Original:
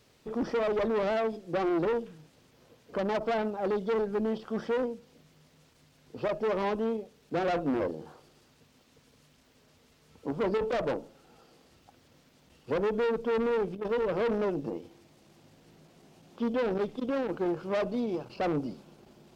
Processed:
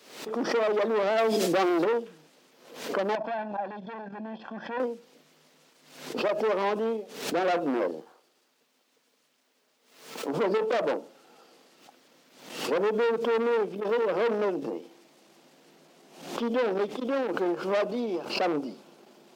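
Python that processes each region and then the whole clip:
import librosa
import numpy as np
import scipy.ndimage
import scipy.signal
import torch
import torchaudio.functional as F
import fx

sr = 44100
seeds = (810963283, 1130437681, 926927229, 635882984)

y = fx.chain(x, sr, fx.high_shelf(hz=3500.0, db=9.5),
    fx.env_flatten(amount_pct=100), at=(1.18, 1.84))
y = fx.chain(y, sr, fx.lowpass(hz=2800.0, slope=12),
    fx.level_steps(step_db=12),
    fx.comb(ms=1.2, depth=0.76), at=(3.15, 4.8))
y = fx.chain(y, sr, fx.law_mismatch(coded='A'),
    fx.highpass(hz=240.0, slope=6), at=(8.0, 10.28))
y = scipy.signal.sosfilt(scipy.signal.bessel(8, 310.0, 'highpass', norm='mag', fs=sr, output='sos'), y)
y = fx.pre_swell(y, sr, db_per_s=85.0)
y = F.gain(torch.from_numpy(y), 4.0).numpy()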